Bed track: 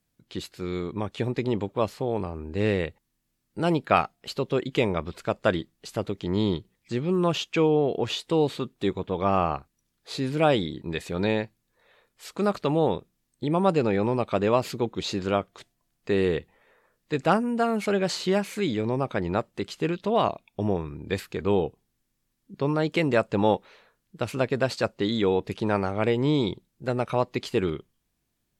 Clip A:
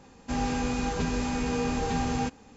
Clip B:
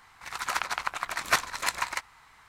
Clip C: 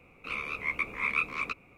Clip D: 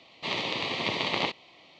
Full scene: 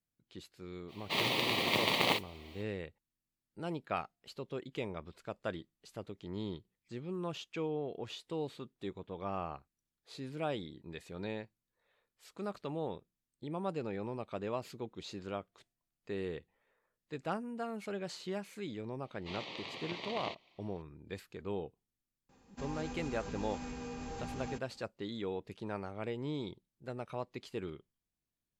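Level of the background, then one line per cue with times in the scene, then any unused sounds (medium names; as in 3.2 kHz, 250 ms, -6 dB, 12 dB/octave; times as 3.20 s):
bed track -15.5 dB
0.87 s: add D -1.5 dB, fades 0.05 s + modulation noise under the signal 16 dB
19.03 s: add D -14 dB
22.29 s: add A -12.5 dB + peak limiter -21.5 dBFS
not used: B, C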